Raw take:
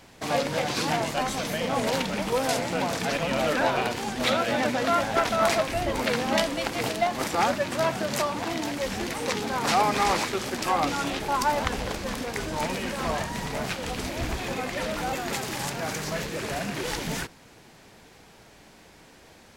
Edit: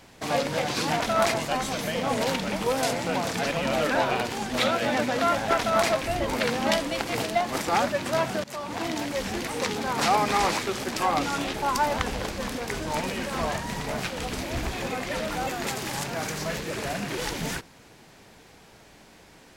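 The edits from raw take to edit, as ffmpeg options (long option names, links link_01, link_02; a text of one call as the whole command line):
ffmpeg -i in.wav -filter_complex "[0:a]asplit=4[link_01][link_02][link_03][link_04];[link_01]atrim=end=1.002[link_05];[link_02]atrim=start=5.228:end=5.572[link_06];[link_03]atrim=start=0.998:end=8.1,asetpts=PTS-STARTPTS,afade=type=out:start_time=7.098:duration=0.004:curve=hsin:silence=0.0668344[link_07];[link_04]atrim=start=8.1,asetpts=PTS-STARTPTS,afade=type=in:duration=0.38:silence=0.0668344[link_08];[link_05][link_06]acrossfade=duration=0.004:curve1=hsin:curve2=hsin[link_09];[link_07][link_08]concat=n=2:v=0:a=1[link_10];[link_09][link_10]acrossfade=duration=0.004:curve1=hsin:curve2=hsin" out.wav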